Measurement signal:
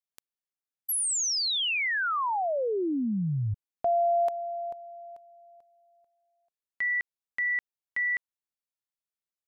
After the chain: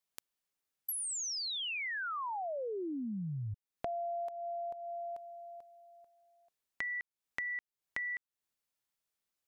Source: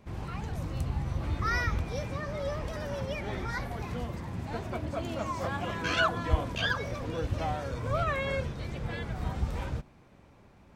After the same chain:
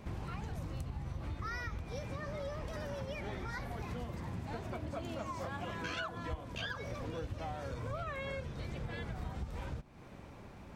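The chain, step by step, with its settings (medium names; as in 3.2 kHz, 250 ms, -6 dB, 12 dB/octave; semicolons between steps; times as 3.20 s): compression 6:1, threshold -44 dBFS; trim +5.5 dB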